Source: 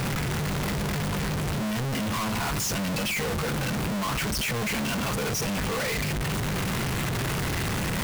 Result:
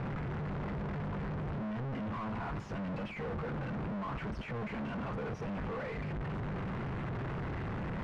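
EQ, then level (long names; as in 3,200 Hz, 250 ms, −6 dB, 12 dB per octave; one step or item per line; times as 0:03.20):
low-pass filter 1,500 Hz 12 dB per octave
−8.5 dB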